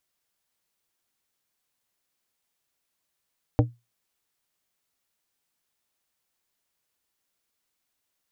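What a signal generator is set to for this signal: glass hit plate, lowest mode 119 Hz, decay 0.23 s, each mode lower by 3 dB, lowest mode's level -13 dB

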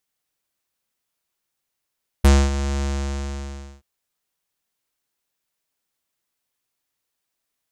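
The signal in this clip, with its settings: synth note square C#2 12 dB/oct, low-pass 7100 Hz, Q 2.6, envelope 1 oct, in 0.05 s, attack 9.2 ms, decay 0.25 s, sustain -12.5 dB, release 0.99 s, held 0.59 s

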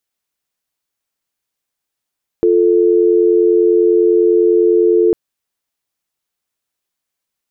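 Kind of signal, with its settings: call progress tone dial tone, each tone -11 dBFS 2.70 s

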